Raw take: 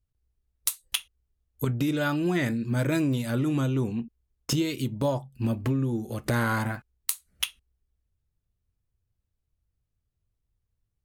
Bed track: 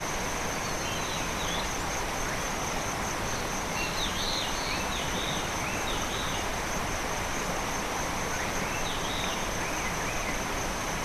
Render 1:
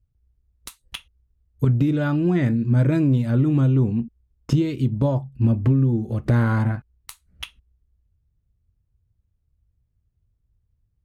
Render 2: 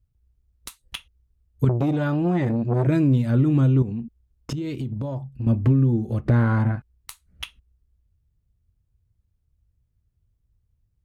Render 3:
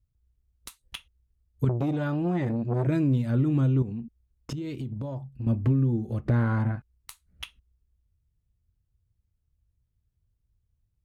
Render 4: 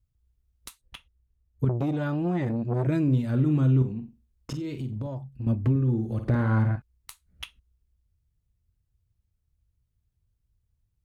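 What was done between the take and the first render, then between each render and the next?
high-pass 79 Hz 6 dB/octave; RIAA curve playback
1.69–2.87 s: transformer saturation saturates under 440 Hz; 3.82–5.47 s: compression, threshold -25 dBFS; 6.21–6.77 s: treble shelf 4.4 kHz -11.5 dB
trim -5 dB
0.81–1.69 s: treble shelf 2.4 kHz -9.5 dB; 3.03–5.07 s: flutter echo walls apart 7.9 m, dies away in 0.29 s; 5.70–6.76 s: flutter echo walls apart 9.3 m, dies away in 0.41 s

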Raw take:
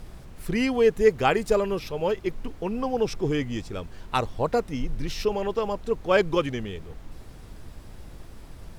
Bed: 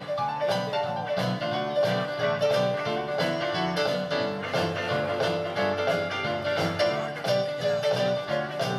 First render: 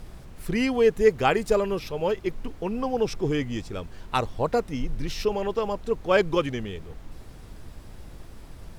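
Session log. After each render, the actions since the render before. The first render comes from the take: no audible change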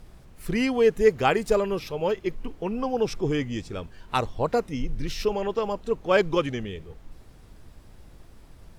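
noise print and reduce 6 dB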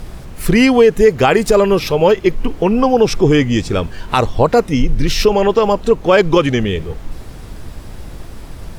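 in parallel at +2 dB: compression, threshold -31 dBFS, peak gain reduction 17 dB; on the sum: loudness maximiser +11 dB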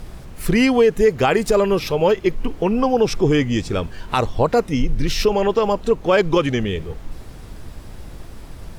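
trim -5 dB

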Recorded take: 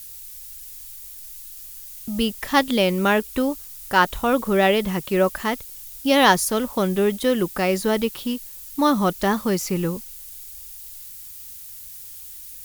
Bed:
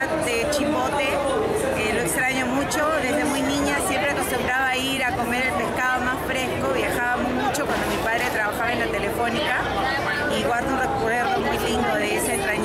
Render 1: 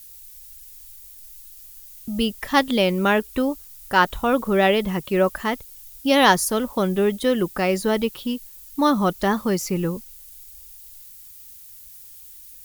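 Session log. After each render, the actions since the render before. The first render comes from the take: noise reduction 6 dB, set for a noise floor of -39 dBFS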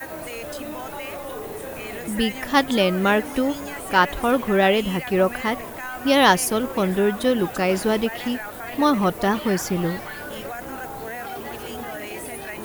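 add bed -11 dB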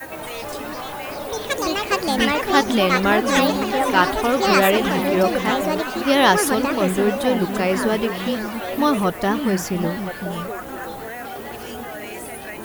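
ever faster or slower copies 115 ms, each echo +6 st, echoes 2; repeats whose band climbs or falls 510 ms, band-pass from 210 Hz, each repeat 1.4 oct, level -4.5 dB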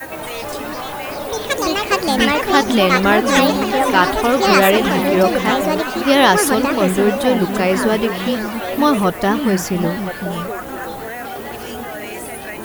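trim +4 dB; peak limiter -1 dBFS, peak gain reduction 3 dB

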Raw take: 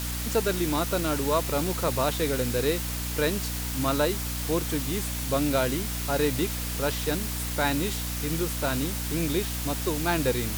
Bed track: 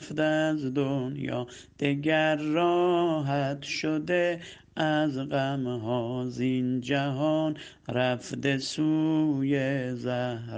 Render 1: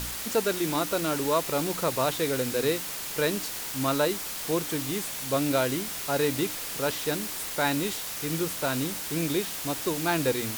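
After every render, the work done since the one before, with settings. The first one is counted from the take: de-hum 60 Hz, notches 5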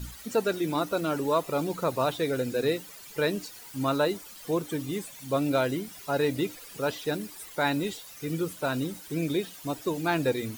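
noise reduction 15 dB, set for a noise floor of -35 dBFS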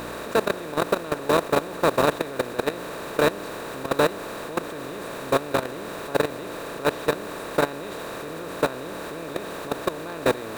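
spectral levelling over time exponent 0.2; level held to a coarse grid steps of 17 dB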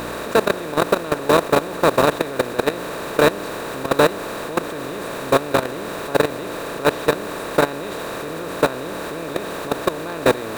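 trim +5.5 dB; peak limiter -2 dBFS, peak gain reduction 2.5 dB

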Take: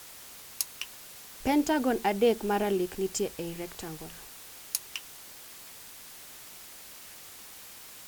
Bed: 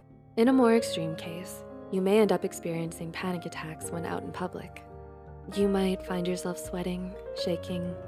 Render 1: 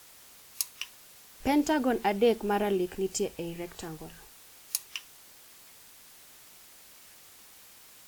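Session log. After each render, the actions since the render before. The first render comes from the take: noise print and reduce 6 dB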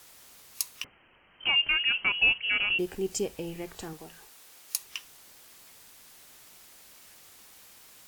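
0.84–2.79 s: frequency inversion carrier 3.1 kHz; 3.93–4.82 s: bass shelf 160 Hz -11.5 dB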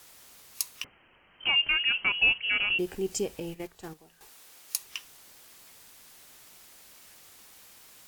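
3.40–4.21 s: gate -40 dBFS, range -11 dB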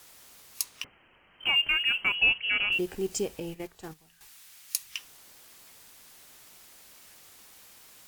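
0.64–2.15 s: median filter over 3 samples; 2.72–3.38 s: block-companded coder 5-bit; 3.91–4.99 s: FFT filter 150 Hz 0 dB, 420 Hz -13 dB, 2 kHz +1 dB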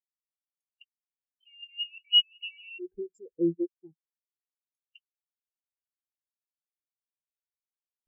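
compressor with a negative ratio -34 dBFS, ratio -1; spectral contrast expander 4:1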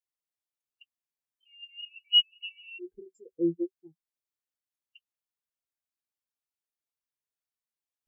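comb of notches 190 Hz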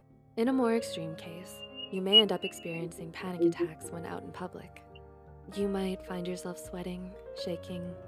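add bed -6 dB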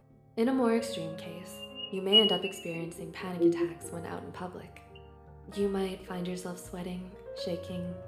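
gated-style reverb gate 210 ms falling, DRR 7.5 dB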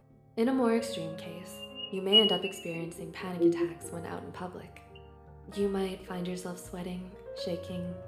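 no audible change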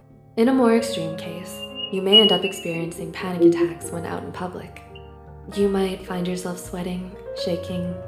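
trim +10 dB; peak limiter -2 dBFS, peak gain reduction 2 dB

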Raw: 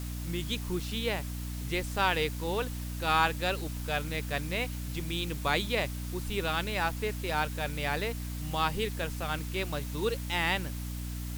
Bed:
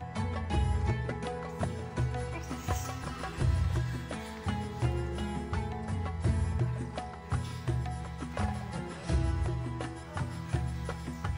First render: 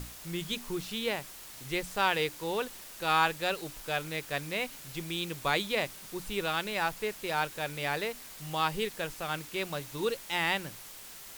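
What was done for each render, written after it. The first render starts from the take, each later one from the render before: hum notches 60/120/180/240/300 Hz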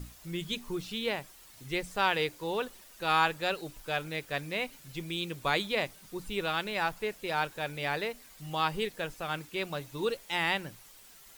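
noise reduction 9 dB, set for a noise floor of -48 dBFS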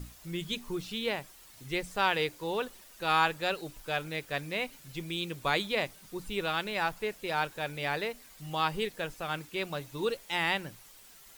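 no audible change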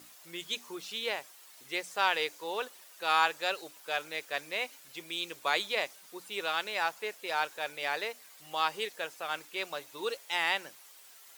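dynamic bell 6.2 kHz, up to +5 dB, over -52 dBFS, Q 1.9; high-pass 500 Hz 12 dB/octave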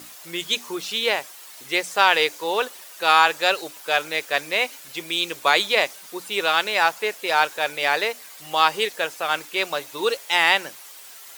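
trim +12 dB; peak limiter -2 dBFS, peak gain reduction 2.5 dB

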